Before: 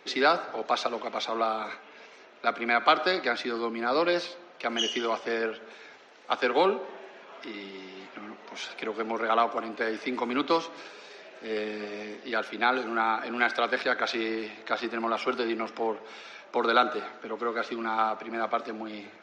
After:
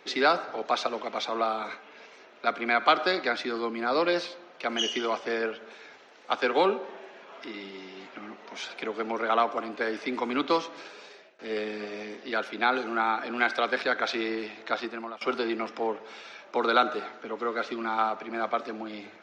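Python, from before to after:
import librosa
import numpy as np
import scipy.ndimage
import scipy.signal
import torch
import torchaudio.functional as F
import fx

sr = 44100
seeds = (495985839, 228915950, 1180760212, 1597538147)

y = fx.edit(x, sr, fx.fade_out_to(start_s=11.04, length_s=0.35, floor_db=-24.0),
    fx.fade_out_to(start_s=14.74, length_s=0.47, floor_db=-19.5), tone=tone)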